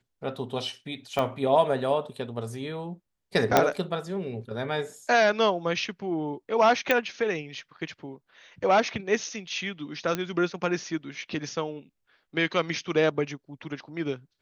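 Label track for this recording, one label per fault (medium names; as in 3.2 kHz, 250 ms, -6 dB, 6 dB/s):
1.190000	1.190000	pop -14 dBFS
3.570000	3.570000	pop -4 dBFS
6.910000	6.910000	pop -8 dBFS
10.150000	10.150000	pop -13 dBFS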